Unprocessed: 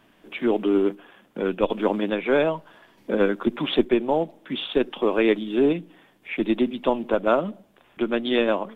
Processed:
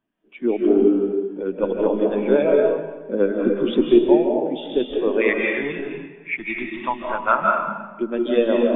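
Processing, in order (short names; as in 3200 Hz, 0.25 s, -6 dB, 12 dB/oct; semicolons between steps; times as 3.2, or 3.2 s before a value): 5.21–7.47 graphic EQ 125/250/500/1000/2000 Hz +4/-8/-11/+7/+10 dB; digital reverb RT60 1.8 s, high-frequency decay 0.7×, pre-delay 0.115 s, DRR -1.5 dB; spectral expander 1.5:1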